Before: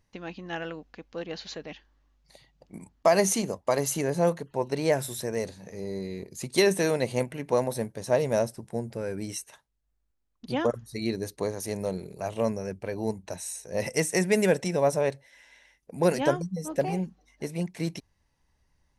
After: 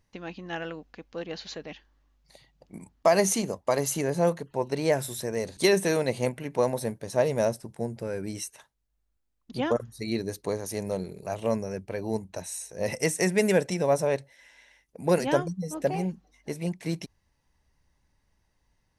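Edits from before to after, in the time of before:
5.57–6.51 cut

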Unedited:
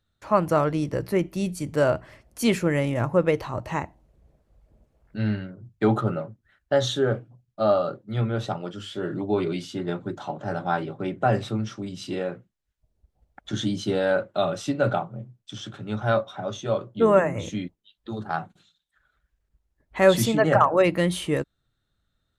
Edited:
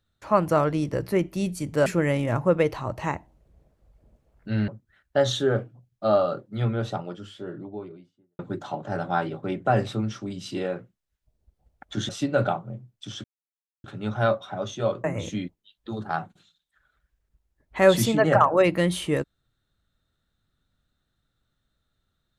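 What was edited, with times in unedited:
1.86–2.54 cut
5.36–6.24 cut
8.11–9.95 studio fade out
13.65–14.55 cut
15.7 insert silence 0.60 s
16.9–17.24 cut

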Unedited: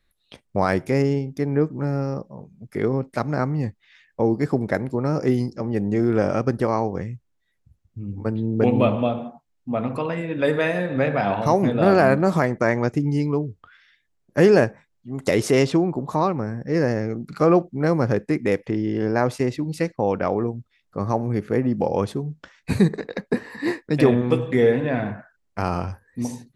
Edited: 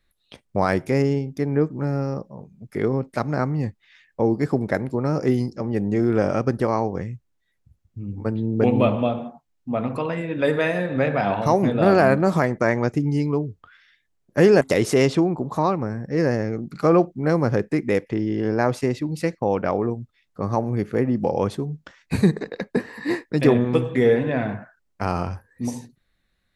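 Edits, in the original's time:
14.61–15.18 cut

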